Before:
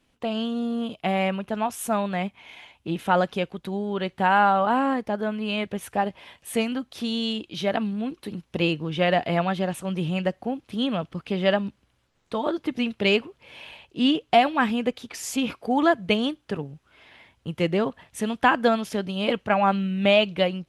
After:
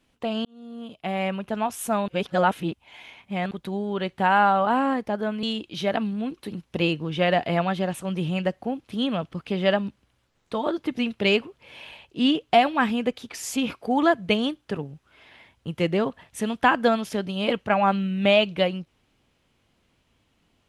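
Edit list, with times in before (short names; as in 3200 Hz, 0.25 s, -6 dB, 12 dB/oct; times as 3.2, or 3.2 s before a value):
0.45–1.49 fade in
2.08–3.51 reverse
5.43–7.23 cut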